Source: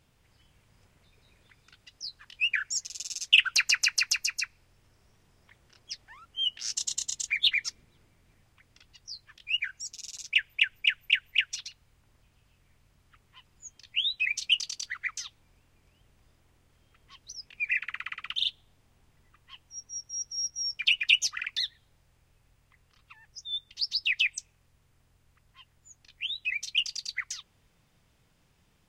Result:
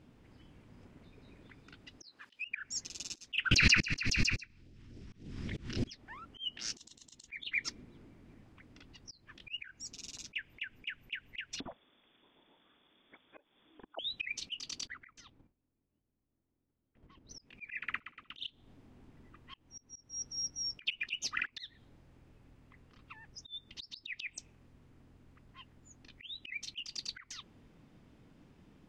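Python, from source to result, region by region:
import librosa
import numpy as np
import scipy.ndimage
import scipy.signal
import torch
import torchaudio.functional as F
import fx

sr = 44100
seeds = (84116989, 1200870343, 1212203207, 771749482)

y = fx.chain(x, sr, fx.highpass(hz=670.0, slope=6),
    fx.band_squash(depth_pct=100), at=(2.02, 2.45))
y = fx.chain(y, sr, fx.lowpass(hz=6900.0, slope=12),
    fx.phaser_stages(stages=2, low_hz=550.0, high_hz=1100.0, hz=3.6, feedback_pct=30),
    fx.pre_swell(db_per_s=23.0), at=(3.51, 5.93))
y = fx.chain(y, sr, fx.highpass(hz=160.0, slope=6),
    fx.freq_invert(carrier_hz=3500), at=(11.6, 13.99))
y = fx.chain(y, sr, fx.gate_hold(open_db=-52.0, close_db=-62.0, hold_ms=71.0, range_db=-21, attack_ms=1.4, release_ms=100.0),
    fx.high_shelf(hz=2000.0, db=-10.0),
    fx.level_steps(step_db=9), at=(14.87, 17.31))
y = fx.lowpass(y, sr, hz=2200.0, slope=6)
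y = fx.peak_eq(y, sr, hz=270.0, db=13.0, octaves=1.2)
y = fx.auto_swell(y, sr, attack_ms=244.0)
y = y * 10.0 ** (3.0 / 20.0)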